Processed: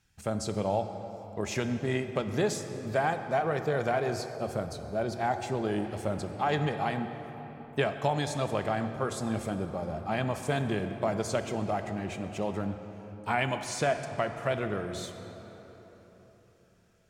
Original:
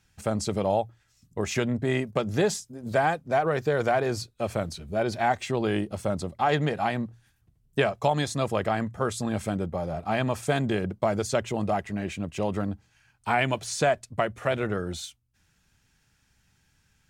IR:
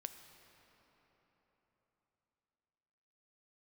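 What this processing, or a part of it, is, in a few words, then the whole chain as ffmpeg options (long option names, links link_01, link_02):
cathedral: -filter_complex "[1:a]atrim=start_sample=2205[link_01];[0:a][link_01]afir=irnorm=-1:irlink=0,asettb=1/sr,asplit=3[link_02][link_03][link_04];[link_02]atrim=end=4.364[link_05];[link_03]atrim=start=4.36:end=5.85,asetpts=PTS-STARTPTS,afade=type=in:duration=0.004:curve=qsin,afade=type=out:start_time=1.486:duration=0.004:curve=qsin,equalizer=frequency=2500:width=1:gain=-5[link_06];[link_04]atrim=start=5.846[link_07];[link_05][link_06]acrossfade=duration=0.004:curve1=hsin:curve2=qsin[link_08];[link_08][link_07]acrossfade=duration=0.004:curve1=qsin:curve2=hsin"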